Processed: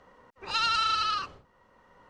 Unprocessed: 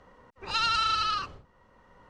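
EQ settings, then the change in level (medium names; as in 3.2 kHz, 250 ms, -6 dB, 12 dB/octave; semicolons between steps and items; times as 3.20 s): bass shelf 160 Hz -7.5 dB; 0.0 dB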